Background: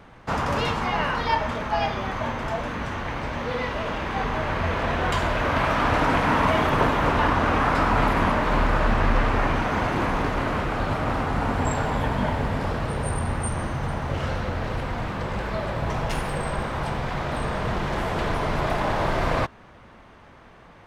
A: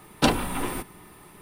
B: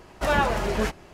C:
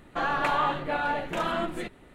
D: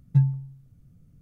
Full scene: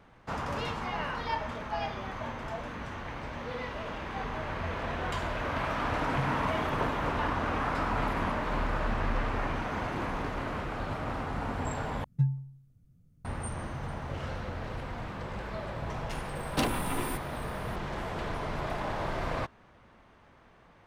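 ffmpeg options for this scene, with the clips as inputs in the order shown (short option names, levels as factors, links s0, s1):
-filter_complex "[4:a]asplit=2[s0][s1];[0:a]volume=0.335[s2];[1:a]asoftclip=type=tanh:threshold=0.106[s3];[s2]asplit=2[s4][s5];[s4]atrim=end=12.044[s6];[s1]atrim=end=1.21,asetpts=PTS-STARTPTS,volume=0.422[s7];[s5]atrim=start=13.246[s8];[s0]atrim=end=1.21,asetpts=PTS-STARTPTS,volume=0.178,afade=t=in:d=0.004:c=hsin,afade=t=out:st=1.206:d=0.004:c=hsin,adelay=6020[s9];[s3]atrim=end=1.41,asetpts=PTS-STARTPTS,volume=0.708,afade=t=in:d=0.004:c=hsin,afade=t=out:st=1.406:d=0.004:c=hsin,adelay=16350[s10];[s6][s7]acrossfade=d=0.004:c1=hsin:c2=hsin[s11];[s11][s8]acrossfade=d=0.004:c1=hsin:c2=hsin[s12];[s12][s9][s10]amix=inputs=3:normalize=0"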